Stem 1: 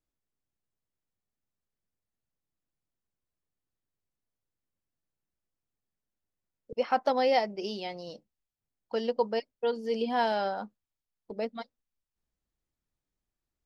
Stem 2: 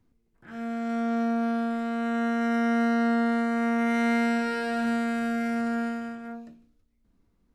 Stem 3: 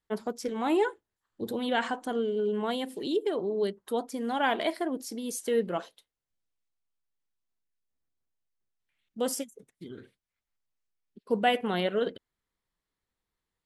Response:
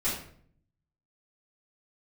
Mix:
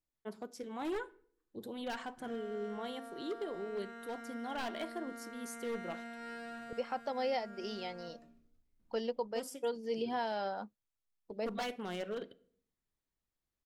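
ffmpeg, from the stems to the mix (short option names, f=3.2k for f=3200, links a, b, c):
-filter_complex "[0:a]volume=-5dB[a];[1:a]acompressor=threshold=-32dB:ratio=6,adelay=1750,volume=-10.5dB,asplit=2[b][c];[c]volume=-14.5dB[d];[2:a]aeval=exprs='0.0891*(abs(mod(val(0)/0.0891+3,4)-2)-1)':c=same,adelay=150,volume=-11.5dB,asplit=2[e][f];[f]volume=-24dB[g];[3:a]atrim=start_sample=2205[h];[d][g]amix=inputs=2:normalize=0[i];[i][h]afir=irnorm=-1:irlink=0[j];[a][b][e][j]amix=inputs=4:normalize=0,alimiter=level_in=2dB:limit=-24dB:level=0:latency=1:release=404,volume=-2dB"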